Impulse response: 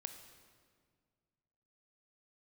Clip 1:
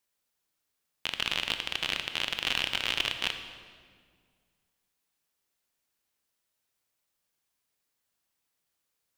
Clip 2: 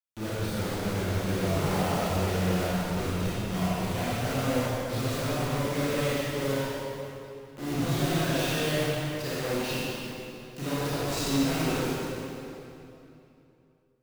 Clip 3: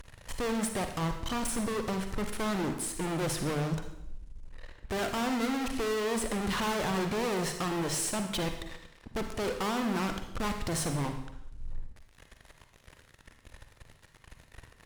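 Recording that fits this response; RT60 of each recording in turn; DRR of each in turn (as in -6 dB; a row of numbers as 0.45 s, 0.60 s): 1; 1.9 s, 2.9 s, 0.75 s; 7.0 dB, -10.0 dB, 6.0 dB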